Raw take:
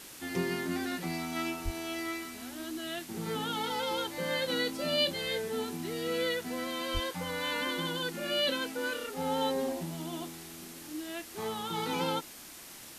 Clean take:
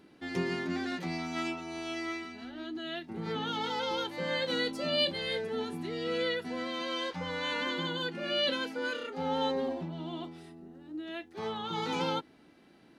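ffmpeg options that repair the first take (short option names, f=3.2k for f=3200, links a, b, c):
-filter_complex "[0:a]adeclick=t=4,asplit=3[a][b][c];[a]afade=t=out:st=1.64:d=0.02[d];[b]highpass=f=140:w=0.5412,highpass=f=140:w=1.3066,afade=t=in:st=1.64:d=0.02,afade=t=out:st=1.76:d=0.02[e];[c]afade=t=in:st=1.76:d=0.02[f];[d][e][f]amix=inputs=3:normalize=0,asplit=3[g][h][i];[g]afade=t=out:st=6.93:d=0.02[j];[h]highpass=f=140:w=0.5412,highpass=f=140:w=1.3066,afade=t=in:st=6.93:d=0.02,afade=t=out:st=7.05:d=0.02[k];[i]afade=t=in:st=7.05:d=0.02[l];[j][k][l]amix=inputs=3:normalize=0,afwtdn=0.0045"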